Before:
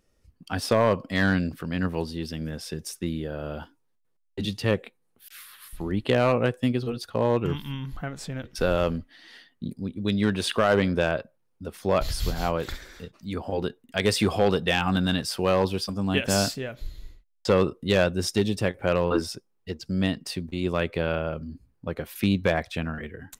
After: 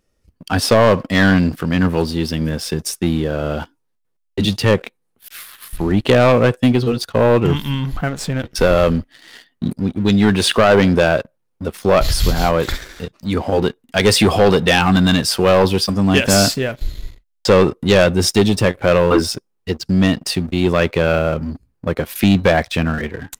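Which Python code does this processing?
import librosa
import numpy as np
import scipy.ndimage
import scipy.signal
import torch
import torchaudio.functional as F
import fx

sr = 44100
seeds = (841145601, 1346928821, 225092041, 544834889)

y = fx.leveller(x, sr, passes=2)
y = y * 10.0 ** (5.0 / 20.0)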